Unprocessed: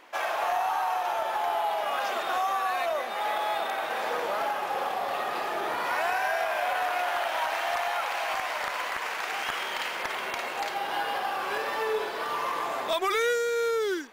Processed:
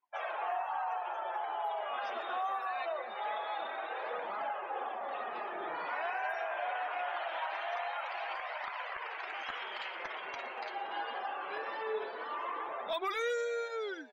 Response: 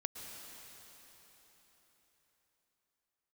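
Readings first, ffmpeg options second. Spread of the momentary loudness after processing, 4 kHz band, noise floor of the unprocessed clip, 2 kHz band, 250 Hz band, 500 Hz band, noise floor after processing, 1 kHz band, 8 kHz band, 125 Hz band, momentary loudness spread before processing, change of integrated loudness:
5 LU, -11.0 dB, -34 dBFS, -9.0 dB, -11.0 dB, -8.5 dB, -43 dBFS, -8.0 dB, under -15 dB, no reading, 4 LU, -8.5 dB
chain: -filter_complex "[0:a]flanger=delay=0.8:depth=8.2:regen=-42:speed=0.23:shape=triangular,afftdn=nr=32:nf=-43,asplit=6[s0][s1][s2][s3][s4][s5];[s1]adelay=118,afreqshift=97,volume=0.1[s6];[s2]adelay=236,afreqshift=194,volume=0.0569[s7];[s3]adelay=354,afreqshift=291,volume=0.0324[s8];[s4]adelay=472,afreqshift=388,volume=0.0186[s9];[s5]adelay=590,afreqshift=485,volume=0.0106[s10];[s0][s6][s7][s8][s9][s10]amix=inputs=6:normalize=0,volume=0.596"

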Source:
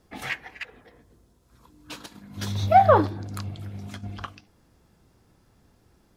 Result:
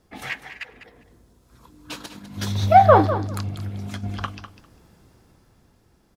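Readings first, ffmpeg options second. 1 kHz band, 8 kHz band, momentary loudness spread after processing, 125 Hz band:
+4.0 dB, +3.5 dB, 24 LU, +5.0 dB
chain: -filter_complex "[0:a]dynaudnorm=f=230:g=11:m=2.82,asplit=2[s0][s1];[s1]aecho=0:1:200|400:0.251|0.0377[s2];[s0][s2]amix=inputs=2:normalize=0"

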